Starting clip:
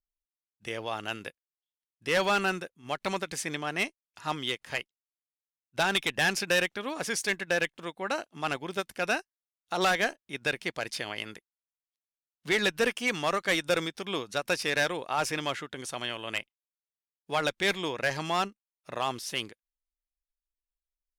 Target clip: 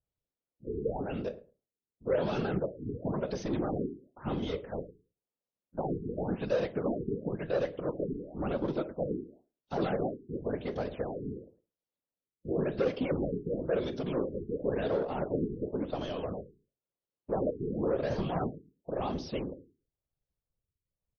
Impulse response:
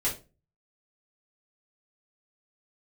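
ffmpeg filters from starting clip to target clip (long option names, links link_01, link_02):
-filter_complex "[0:a]asoftclip=type=tanh:threshold=-34dB,equalizer=frequency=125:width_type=o:width=1:gain=9,equalizer=frequency=250:width_type=o:width=1:gain=7,equalizer=frequency=500:width_type=o:width=1:gain=12,equalizer=frequency=2000:width_type=o:width=1:gain=-7,equalizer=frequency=8000:width_type=o:width=1:gain=-9,asplit=2[link_01][link_02];[1:a]atrim=start_sample=2205,afade=type=out:start_time=0.27:duration=0.01,atrim=end_sample=12348[link_03];[link_02][link_03]afir=irnorm=-1:irlink=0,volume=-14dB[link_04];[link_01][link_04]amix=inputs=2:normalize=0,aeval=exprs='0.188*(cos(1*acos(clip(val(0)/0.188,-1,1)))-cos(1*PI/2))+0.0237*(cos(5*acos(clip(val(0)/0.188,-1,1)))-cos(5*PI/2))':channel_layout=same,afftfilt=real='hypot(re,im)*cos(2*PI*random(0))':imag='hypot(re,im)*sin(2*PI*random(1))':win_size=512:overlap=0.75,asplit=2[link_05][link_06];[link_06]adelay=108,lowpass=frequency=840:poles=1,volume=-17dB,asplit=2[link_07][link_08];[link_08]adelay=108,lowpass=frequency=840:poles=1,volume=0.17[link_09];[link_05][link_07][link_09]amix=inputs=3:normalize=0,afftfilt=real='re*lt(b*sr/1024,440*pow(6600/440,0.5+0.5*sin(2*PI*0.95*pts/sr)))':imag='im*lt(b*sr/1024,440*pow(6600/440,0.5+0.5*sin(2*PI*0.95*pts/sr)))':win_size=1024:overlap=0.75"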